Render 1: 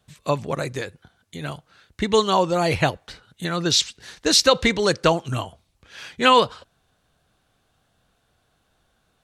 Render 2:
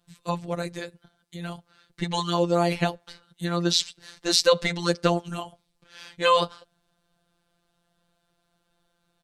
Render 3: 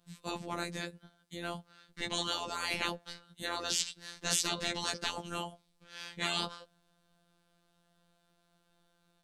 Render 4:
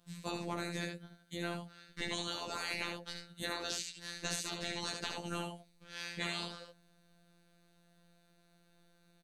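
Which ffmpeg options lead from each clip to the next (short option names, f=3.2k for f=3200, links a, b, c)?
-af "aecho=1:1:5.6:0.32,afftfilt=real='hypot(re,im)*cos(PI*b)':imag='0':win_size=1024:overlap=0.75,volume=-2dB"
-af "afftfilt=real='hypot(re,im)*cos(PI*b)':imag='0':win_size=2048:overlap=0.75,afftfilt=real='re*lt(hypot(re,im),0.126)':imag='im*lt(hypot(re,im),0.126)':win_size=1024:overlap=0.75,equalizer=f=210:w=6.1:g=6.5"
-filter_complex "[0:a]acompressor=threshold=-36dB:ratio=6,asplit=2[a][b];[b]aecho=0:1:58|75:0.126|0.562[c];[a][c]amix=inputs=2:normalize=0,volume=1.5dB"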